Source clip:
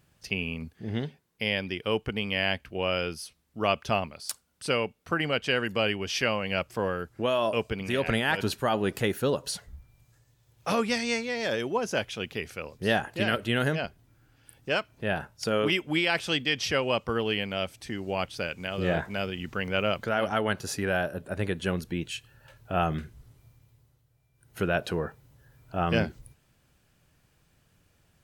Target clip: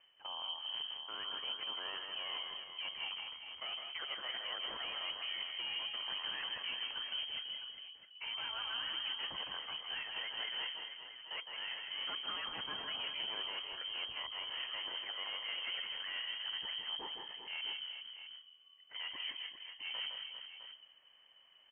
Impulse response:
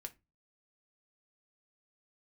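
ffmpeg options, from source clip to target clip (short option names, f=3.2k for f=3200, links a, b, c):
-filter_complex "[0:a]areverse,acompressor=threshold=-35dB:ratio=5,areverse,afreqshift=-290,aeval=exprs='(tanh(79.4*val(0)+0.3)-tanh(0.3))/79.4':c=same,atempo=1.3,asplit=2[a][b];[b]aecho=0:1:160|188|365|399|658:0.531|0.282|0.126|0.335|0.282[c];[a][c]amix=inputs=2:normalize=0,lowpass=f=2.7k:t=q:w=0.5098,lowpass=f=2.7k:t=q:w=0.6013,lowpass=f=2.7k:t=q:w=0.9,lowpass=f=2.7k:t=q:w=2.563,afreqshift=-3200"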